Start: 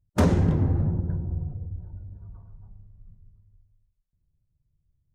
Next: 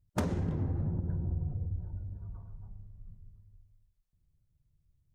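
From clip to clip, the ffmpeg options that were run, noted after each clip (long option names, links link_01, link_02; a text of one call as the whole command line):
ffmpeg -i in.wav -af "acompressor=threshold=-28dB:ratio=16" out.wav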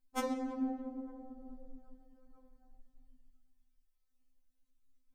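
ffmpeg -i in.wav -af "afftfilt=real='re*3.46*eq(mod(b,12),0)':imag='im*3.46*eq(mod(b,12),0)':win_size=2048:overlap=0.75,volume=2.5dB" out.wav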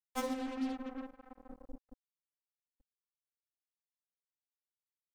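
ffmpeg -i in.wav -af "acrusher=bits=6:mix=0:aa=0.5,volume=-1dB" out.wav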